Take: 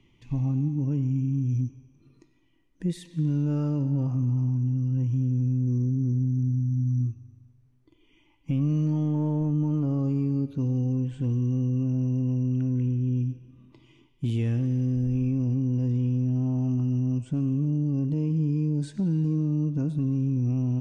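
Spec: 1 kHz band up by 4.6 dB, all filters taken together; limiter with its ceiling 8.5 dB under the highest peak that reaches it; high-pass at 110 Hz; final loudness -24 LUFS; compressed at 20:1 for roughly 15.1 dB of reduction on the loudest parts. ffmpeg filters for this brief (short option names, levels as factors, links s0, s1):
-af "highpass=110,equalizer=f=1000:t=o:g=5.5,acompressor=threshold=0.0126:ratio=20,volume=11.2,alimiter=limit=0.141:level=0:latency=1"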